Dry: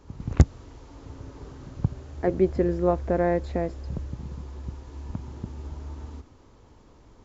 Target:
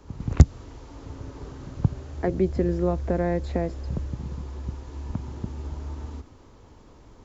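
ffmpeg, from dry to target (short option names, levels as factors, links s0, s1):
-filter_complex "[0:a]acrossover=split=250|3000[s0][s1][s2];[s1]acompressor=threshold=0.0398:ratio=4[s3];[s0][s3][s2]amix=inputs=3:normalize=0,volume=1.41"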